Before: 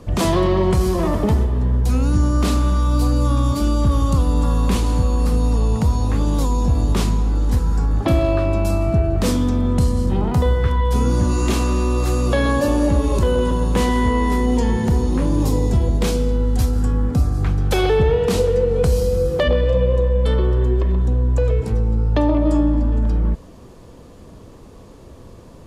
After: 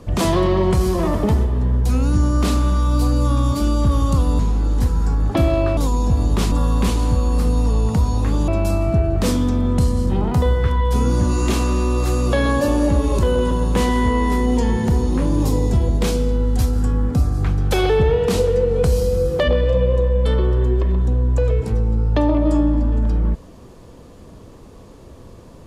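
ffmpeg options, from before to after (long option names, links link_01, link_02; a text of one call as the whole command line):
ffmpeg -i in.wav -filter_complex "[0:a]asplit=5[link_01][link_02][link_03][link_04][link_05];[link_01]atrim=end=4.392[link_06];[link_02]atrim=start=7.098:end=8.482[link_07];[link_03]atrim=start=6.348:end=7.102[link_08];[link_04]atrim=start=4.388:end=6.352[link_09];[link_05]atrim=start=8.478[link_10];[link_06][link_07]acrossfade=duration=0.004:curve1=hsin:curve2=hsin[link_11];[link_11][link_08]acrossfade=duration=0.004:curve1=hsin:curve2=hsin[link_12];[link_12][link_09]acrossfade=duration=0.004:curve1=hsin:curve2=hsin[link_13];[link_13][link_10]acrossfade=duration=0.004:curve1=hsin:curve2=hsin" out.wav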